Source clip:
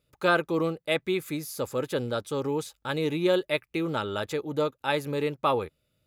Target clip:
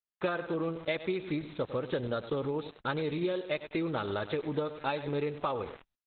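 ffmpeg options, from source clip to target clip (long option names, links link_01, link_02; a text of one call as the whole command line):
ffmpeg -i in.wav -af "bandreject=frequency=2800:width=17,aecho=1:1:97|194|291|388:0.2|0.0798|0.0319|0.0128,aeval=exprs='val(0)*gte(abs(val(0)),0.0075)':channel_layout=same,acompressor=threshold=-31dB:ratio=20,volume=3.5dB" -ar 48000 -c:a libopus -b:a 8k out.opus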